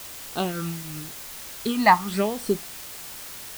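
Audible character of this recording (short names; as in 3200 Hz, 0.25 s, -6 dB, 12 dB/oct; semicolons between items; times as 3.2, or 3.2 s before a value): phasing stages 8, 0.92 Hz, lowest notch 420–2200 Hz; tremolo triangle 3.3 Hz, depth 70%; a quantiser's noise floor 8-bit, dither triangular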